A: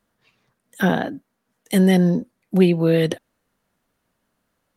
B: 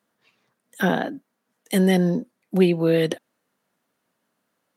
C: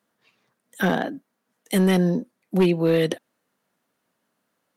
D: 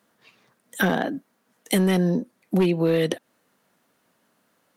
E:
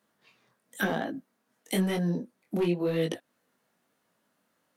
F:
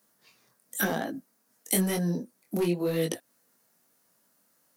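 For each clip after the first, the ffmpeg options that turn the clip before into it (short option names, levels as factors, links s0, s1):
-af "highpass=180,volume=0.891"
-af "asoftclip=type=hard:threshold=0.251"
-af "acompressor=threshold=0.0355:ratio=2.5,volume=2.37"
-af "flanger=delay=18:depth=6:speed=0.97,volume=0.631"
-af "aexciter=amount=4.5:drive=1.4:freq=4600"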